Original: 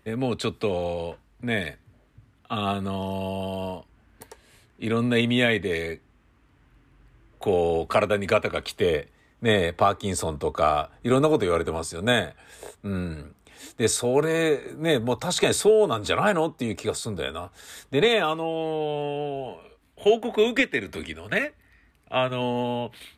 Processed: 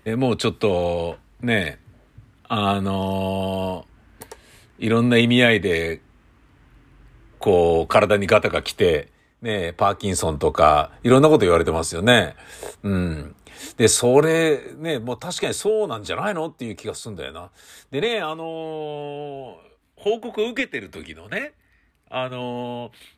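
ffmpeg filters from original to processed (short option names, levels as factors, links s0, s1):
-af "volume=7.94,afade=t=out:st=8.77:d=0.7:silence=0.281838,afade=t=in:st=9.47:d=0.97:silence=0.251189,afade=t=out:st=14.17:d=0.65:silence=0.334965"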